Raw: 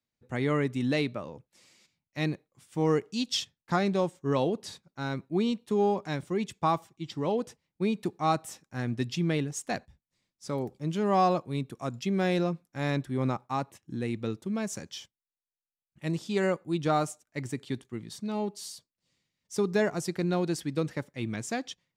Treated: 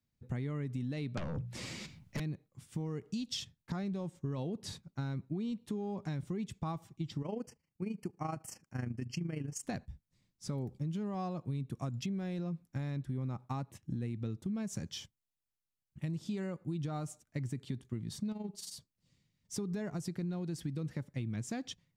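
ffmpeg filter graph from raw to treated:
-filter_complex "[0:a]asettb=1/sr,asplit=3[a][b][c];[a]atrim=end=1.174[d];[b]atrim=start=1.17:end=2.2,asetpts=PTS-STARTPTS,afade=t=in:d=0.004:c=qsin,afade=t=out:st=1.026:d=0.004:c=qsin,highshelf=f=5.7k:g=-10.5,bandreject=f=60:t=h:w=6,bandreject=f=120:t=h:w=6,bandreject=f=180:t=h:w=6,aeval=exprs='0.0944*sin(PI/2*7.08*val(0)/0.0944)':c=same[e];[c]atrim=start=2.196[f];[d][e]acrossfade=d=0.004:c1=hsin:c2=qsin[g];[g][f]acrossfade=d=0.004:c1=qsin:c2=hsin,asettb=1/sr,asplit=3[h][i][j];[h]atrim=end=7.224[k];[i]atrim=start=7.22:end=9.63,asetpts=PTS-STARTPTS,afade=t=in:d=0.004:c=qsin,afade=t=out:st=2.406:d=0.004:c=qsin,lowshelf=f=190:g=-9,tremolo=f=26:d=0.71,asuperstop=centerf=3700:order=12:qfactor=3.2[l];[j]atrim=start=9.626[m];[k][l]acrossfade=d=0.004:c1=hsin:c2=qsin[n];[n][m]acrossfade=d=0.004:c1=qsin:c2=hsin,asettb=1/sr,asplit=3[o][p][q];[o]atrim=end=18.324[r];[p]atrim=start=18.32:end=18.73,asetpts=PTS-STARTPTS,afade=t=in:d=0.004:c=qsin,afade=t=out:st=0.406:d=0.004:c=qsin,acompressor=threshold=-34dB:ratio=5:attack=3.2:release=140:knee=1:detection=peak,tremolo=f=22:d=0.667[s];[q]atrim=start=18.726[t];[r][s]acrossfade=d=0.004:c1=hsin:c2=qsin[u];[u][t]acrossfade=d=0.004:c1=qsin:c2=hsin,bass=f=250:g=14,treble=f=4k:g=1,alimiter=limit=-20.5dB:level=0:latency=1:release=139,acompressor=threshold=-32dB:ratio=5,volume=-2.5dB"

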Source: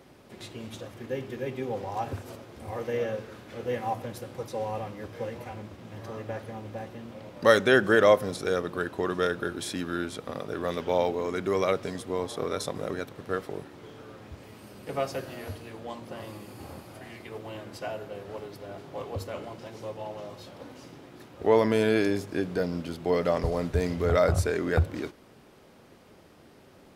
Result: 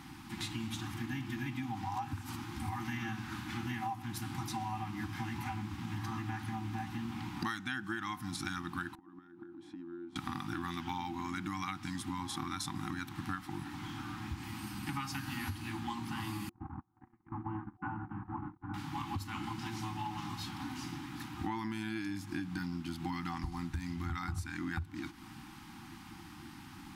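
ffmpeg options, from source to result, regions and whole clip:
-filter_complex "[0:a]asettb=1/sr,asplit=3[a][b][c];[a]atrim=end=8.954[d];[b]atrim=start=8.95:end=10.16,asetpts=PTS-STARTPTS,afade=t=in:d=0.004:c=qsin,afade=t=out:st=1.206:d=0.004:c=qsin,bandpass=f=410:t=q:w=4.6,acompressor=threshold=-46dB:ratio=5:attack=3.2:release=140:knee=1:detection=peak[e];[c]atrim=start=10.156[f];[d][e]acrossfade=d=0.004:c1=hsin:c2=qsin[g];[g][f]acrossfade=d=0.004:c1=qsin:c2=hsin,asettb=1/sr,asplit=3[h][i][j];[h]atrim=end=16.494[k];[i]atrim=start=16.49:end=18.74,asetpts=PTS-STARTPTS,afade=t=in:d=0.004:c=qsin,afade=t=out:st=2.246:d=0.004:c=qsin,lowpass=f=1.3k:w=0.5412,lowpass=f=1.3k:w=1.3066,agate=range=-36dB:threshold=-42dB:ratio=16:release=100:detection=peak[l];[j]atrim=start=18.736[m];[k][l]acrossfade=d=0.004:c1=hsin:c2=qsin[n];[n][m]acrossfade=d=0.004:c1=qsin:c2=hsin,afftfilt=real='re*(1-between(b*sr/4096,350,750))':imag='im*(1-between(b*sr/4096,350,750))':win_size=4096:overlap=0.75,acompressor=threshold=-41dB:ratio=12,volume=6.5dB"

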